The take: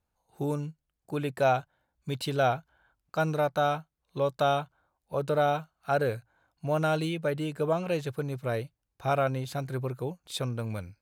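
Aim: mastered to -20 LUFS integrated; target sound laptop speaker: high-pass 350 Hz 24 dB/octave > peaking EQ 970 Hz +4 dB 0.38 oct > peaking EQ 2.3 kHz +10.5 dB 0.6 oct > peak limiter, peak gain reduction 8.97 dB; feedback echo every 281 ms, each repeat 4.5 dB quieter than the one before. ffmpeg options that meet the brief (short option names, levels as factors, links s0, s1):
-af "highpass=f=350:w=0.5412,highpass=f=350:w=1.3066,equalizer=f=970:t=o:w=0.38:g=4,equalizer=f=2300:t=o:w=0.6:g=10.5,aecho=1:1:281|562|843|1124|1405|1686|1967|2248|2529:0.596|0.357|0.214|0.129|0.0772|0.0463|0.0278|0.0167|0.01,volume=3.76,alimiter=limit=0.376:level=0:latency=1"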